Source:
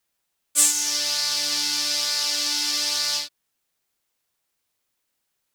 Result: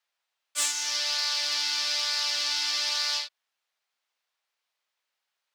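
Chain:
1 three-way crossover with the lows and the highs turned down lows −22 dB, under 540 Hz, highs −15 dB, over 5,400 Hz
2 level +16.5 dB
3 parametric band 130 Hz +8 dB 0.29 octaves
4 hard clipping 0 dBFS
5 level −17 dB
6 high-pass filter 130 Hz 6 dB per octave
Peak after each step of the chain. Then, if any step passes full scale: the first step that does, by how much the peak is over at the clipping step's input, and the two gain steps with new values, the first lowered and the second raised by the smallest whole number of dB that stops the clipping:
−12.0, +4.5, +4.5, 0.0, −17.0, −16.5 dBFS
step 2, 4.5 dB
step 2 +11.5 dB, step 5 −12 dB

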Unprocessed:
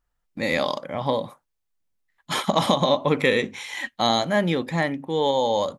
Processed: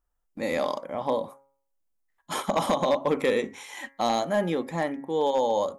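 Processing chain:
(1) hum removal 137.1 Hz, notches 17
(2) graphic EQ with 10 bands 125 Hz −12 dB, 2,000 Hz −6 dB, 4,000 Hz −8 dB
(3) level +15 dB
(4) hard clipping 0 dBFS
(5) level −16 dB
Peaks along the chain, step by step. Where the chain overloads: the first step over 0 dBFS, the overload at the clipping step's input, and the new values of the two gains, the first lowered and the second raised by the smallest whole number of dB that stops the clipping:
−4.5, −7.0, +8.0, 0.0, −16.0 dBFS
step 3, 8.0 dB
step 3 +7 dB, step 5 −8 dB

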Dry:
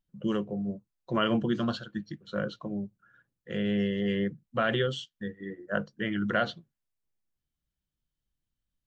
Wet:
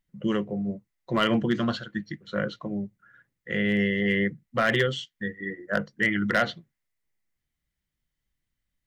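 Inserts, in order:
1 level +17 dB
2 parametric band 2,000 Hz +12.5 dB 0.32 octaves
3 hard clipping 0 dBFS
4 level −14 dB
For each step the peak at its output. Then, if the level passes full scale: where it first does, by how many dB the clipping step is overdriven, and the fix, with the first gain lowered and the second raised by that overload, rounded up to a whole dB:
+5.0, +6.5, 0.0, −14.0 dBFS
step 1, 6.5 dB
step 1 +10 dB, step 4 −7 dB

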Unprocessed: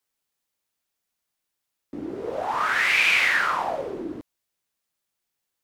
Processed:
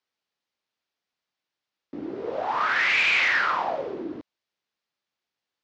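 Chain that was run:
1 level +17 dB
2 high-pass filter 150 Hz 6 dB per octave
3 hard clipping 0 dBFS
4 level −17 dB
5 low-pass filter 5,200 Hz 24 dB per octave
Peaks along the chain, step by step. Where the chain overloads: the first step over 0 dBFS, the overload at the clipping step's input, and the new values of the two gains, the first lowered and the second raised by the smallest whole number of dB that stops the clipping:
+9.0, +9.0, 0.0, −17.0, −15.5 dBFS
step 1, 9.0 dB
step 1 +8 dB, step 4 −8 dB

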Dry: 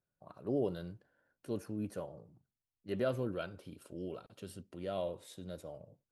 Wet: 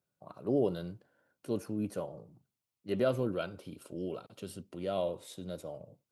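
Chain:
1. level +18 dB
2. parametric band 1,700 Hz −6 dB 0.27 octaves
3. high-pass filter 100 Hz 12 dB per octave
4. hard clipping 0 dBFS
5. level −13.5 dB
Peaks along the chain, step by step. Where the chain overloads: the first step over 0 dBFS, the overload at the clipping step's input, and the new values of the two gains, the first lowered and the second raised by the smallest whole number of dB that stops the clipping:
−4.5, −4.5, −4.0, −4.0, −17.5 dBFS
no step passes full scale

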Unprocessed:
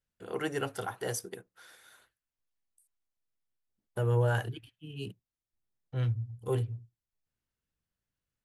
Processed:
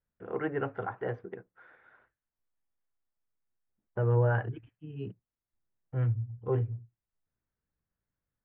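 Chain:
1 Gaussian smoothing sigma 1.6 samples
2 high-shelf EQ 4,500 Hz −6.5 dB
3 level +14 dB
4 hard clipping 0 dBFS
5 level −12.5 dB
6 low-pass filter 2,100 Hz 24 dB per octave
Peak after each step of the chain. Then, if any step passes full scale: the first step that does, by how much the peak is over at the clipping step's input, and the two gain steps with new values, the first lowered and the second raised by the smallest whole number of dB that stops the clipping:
−16.5, −16.5, −2.5, −2.5, −15.0, −15.0 dBFS
no step passes full scale

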